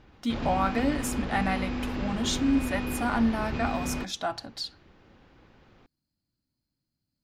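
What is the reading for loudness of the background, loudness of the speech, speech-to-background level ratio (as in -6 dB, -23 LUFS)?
-33.5 LUFS, -29.5 LUFS, 4.0 dB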